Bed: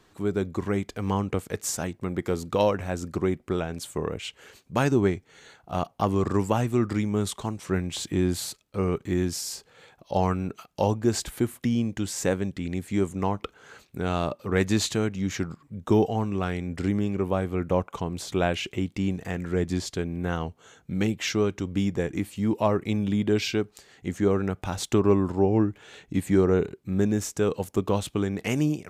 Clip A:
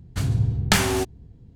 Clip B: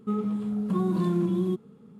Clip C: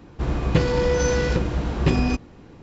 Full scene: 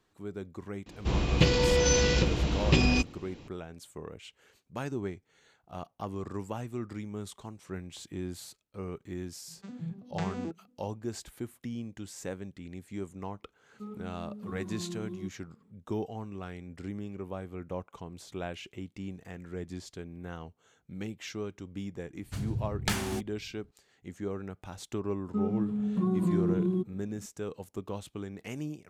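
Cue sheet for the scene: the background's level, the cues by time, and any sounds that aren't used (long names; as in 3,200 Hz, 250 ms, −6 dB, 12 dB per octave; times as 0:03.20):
bed −13 dB
0:00.86: mix in C −4 dB + high shelf with overshoot 2,100 Hz +7 dB, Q 1.5
0:09.46: mix in A −14.5 dB + vocoder with an arpeggio as carrier minor triad, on E3, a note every 109 ms
0:13.73: mix in B −14.5 dB
0:22.16: mix in A −11.5 dB
0:25.27: mix in B −6.5 dB + spectral tilt −2 dB per octave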